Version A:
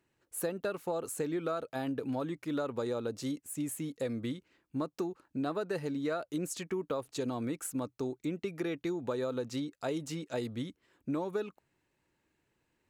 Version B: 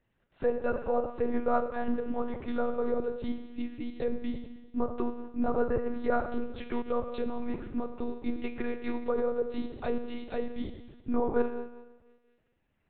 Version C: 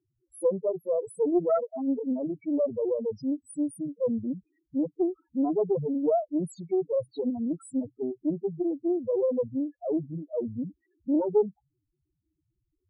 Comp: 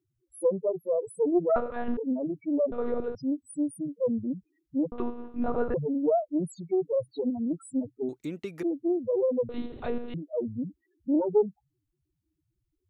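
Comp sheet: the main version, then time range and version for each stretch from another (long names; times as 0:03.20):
C
0:01.56–0:01.97: punch in from B
0:02.72–0:03.15: punch in from B
0:04.92–0:05.74: punch in from B
0:08.09–0:08.63: punch in from A
0:09.49–0:10.14: punch in from B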